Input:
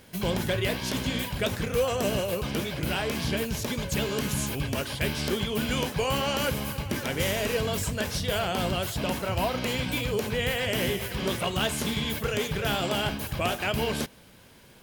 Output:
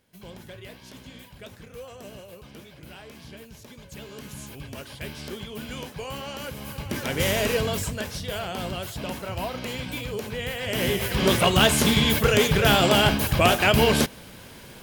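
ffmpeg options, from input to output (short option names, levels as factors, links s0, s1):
-af "volume=7.08,afade=t=in:st=3.74:d=1.19:silence=0.421697,afade=t=in:st=6.54:d=0.85:silence=0.237137,afade=t=out:st=7.39:d=0.73:silence=0.398107,afade=t=in:st=10.6:d=0.77:silence=0.237137"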